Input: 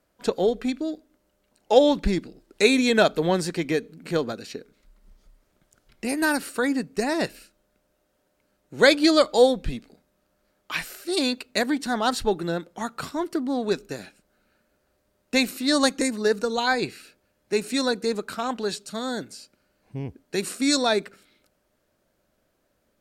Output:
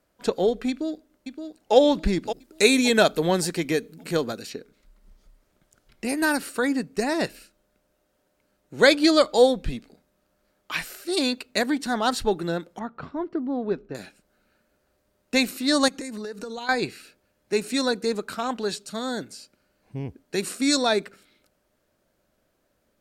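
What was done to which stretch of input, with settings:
0.69–1.75 s: echo throw 570 ms, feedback 35%, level -7.5 dB
2.25–4.50 s: treble shelf 7.4 kHz +10.5 dB
12.79–13.95 s: tape spacing loss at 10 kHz 44 dB
15.88–16.69 s: compression 16:1, threshold -30 dBFS

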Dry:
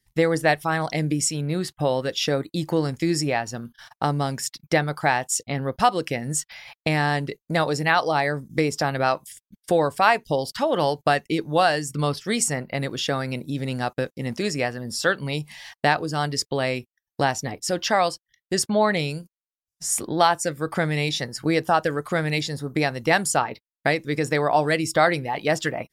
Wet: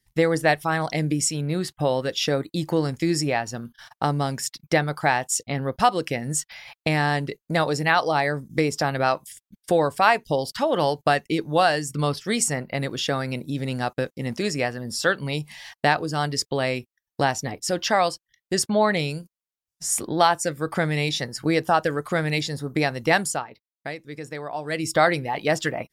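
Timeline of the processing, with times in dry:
23.19–24.90 s: dip -11.5 dB, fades 0.26 s

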